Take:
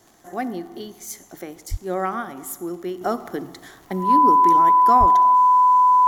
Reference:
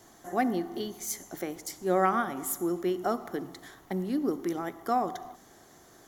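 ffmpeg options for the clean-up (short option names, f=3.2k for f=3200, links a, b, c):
-filter_complex "[0:a]adeclick=t=4,bandreject=f=1k:w=30,asplit=3[a][b][c];[a]afade=t=out:st=1.7:d=0.02[d];[b]highpass=f=140:w=0.5412,highpass=f=140:w=1.3066,afade=t=in:st=1.7:d=0.02,afade=t=out:st=1.82:d=0.02[e];[c]afade=t=in:st=1.82:d=0.02[f];[d][e][f]amix=inputs=3:normalize=0,asplit=3[g][h][i];[g]afade=t=out:st=4.99:d=0.02[j];[h]highpass=f=140:w=0.5412,highpass=f=140:w=1.3066,afade=t=in:st=4.99:d=0.02,afade=t=out:st=5.11:d=0.02[k];[i]afade=t=in:st=5.11:d=0.02[l];[j][k][l]amix=inputs=3:normalize=0,asetnsamples=n=441:p=0,asendcmd='3.01 volume volume -5.5dB',volume=0dB"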